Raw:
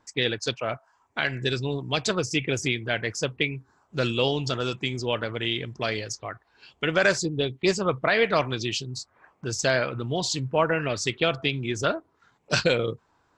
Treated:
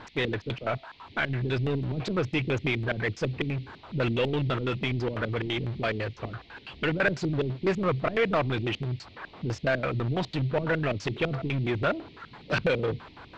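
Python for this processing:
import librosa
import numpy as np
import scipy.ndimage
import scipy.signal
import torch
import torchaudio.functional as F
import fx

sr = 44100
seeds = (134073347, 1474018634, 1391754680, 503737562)

y = fx.power_curve(x, sr, exponent=0.5)
y = fx.filter_lfo_lowpass(y, sr, shape='square', hz=6.0, low_hz=270.0, high_hz=2400.0, q=1.0)
y = fx.dmg_noise_band(y, sr, seeds[0], low_hz=2000.0, high_hz=4300.0, level_db=-50.0)
y = y * 10.0 ** (-8.0 / 20.0)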